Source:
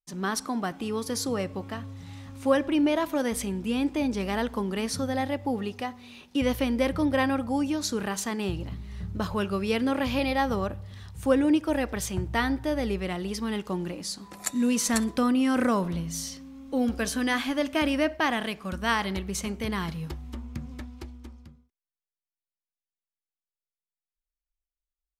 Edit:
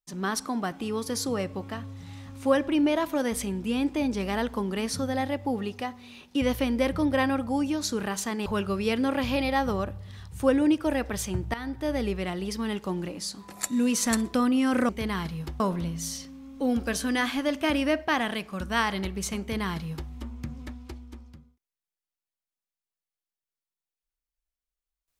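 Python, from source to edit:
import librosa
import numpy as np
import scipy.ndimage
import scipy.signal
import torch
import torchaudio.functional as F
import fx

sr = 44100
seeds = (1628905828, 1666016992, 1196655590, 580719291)

y = fx.edit(x, sr, fx.cut(start_s=8.46, length_s=0.83),
    fx.fade_in_from(start_s=12.37, length_s=0.38, floor_db=-15.5),
    fx.duplicate(start_s=19.52, length_s=0.71, to_s=15.72), tone=tone)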